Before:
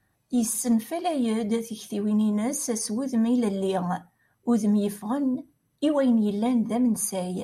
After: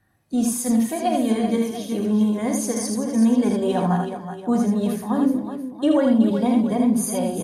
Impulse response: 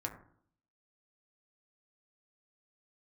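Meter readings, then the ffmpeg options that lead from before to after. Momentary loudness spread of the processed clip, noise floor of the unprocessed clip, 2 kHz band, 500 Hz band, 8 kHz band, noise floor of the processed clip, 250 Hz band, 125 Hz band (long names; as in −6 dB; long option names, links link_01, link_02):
6 LU, −71 dBFS, +5.0 dB, +4.5 dB, +1.5 dB, −37 dBFS, +4.5 dB, +5.0 dB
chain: -filter_complex "[0:a]aecho=1:1:45|80|248|375|688:0.282|0.631|0.126|0.355|0.178,asplit=2[link_01][link_02];[1:a]atrim=start_sample=2205,lowpass=4700[link_03];[link_02][link_03]afir=irnorm=-1:irlink=0,volume=-7dB[link_04];[link_01][link_04]amix=inputs=2:normalize=0"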